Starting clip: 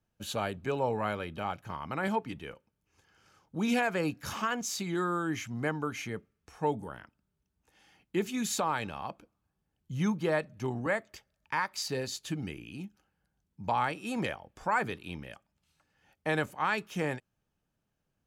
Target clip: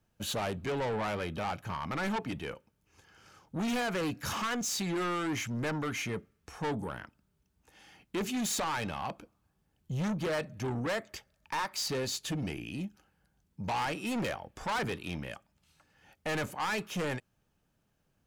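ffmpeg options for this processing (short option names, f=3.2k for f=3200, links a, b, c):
-af "asoftclip=type=tanh:threshold=-35.5dB,volume=6dB"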